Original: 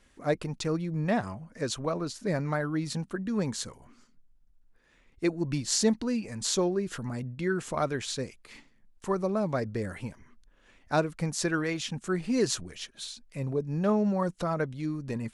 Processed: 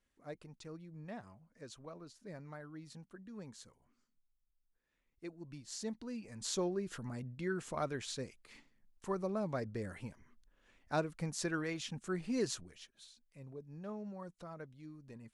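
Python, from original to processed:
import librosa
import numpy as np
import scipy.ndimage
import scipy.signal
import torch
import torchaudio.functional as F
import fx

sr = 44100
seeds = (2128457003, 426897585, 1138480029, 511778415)

y = fx.gain(x, sr, db=fx.line((5.63, -19.5), (6.62, -8.5), (12.41, -8.5), (13.09, -19.0)))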